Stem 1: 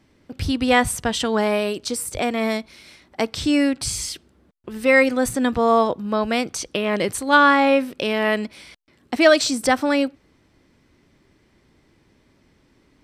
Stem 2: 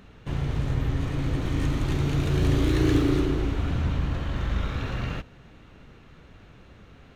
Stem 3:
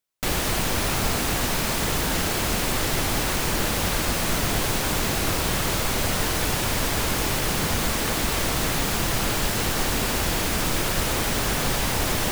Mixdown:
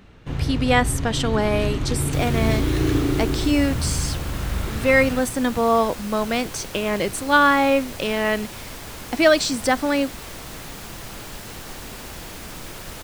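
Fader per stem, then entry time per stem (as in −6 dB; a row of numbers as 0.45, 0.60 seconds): −1.5, +1.0, −12.0 decibels; 0.00, 0.00, 1.90 seconds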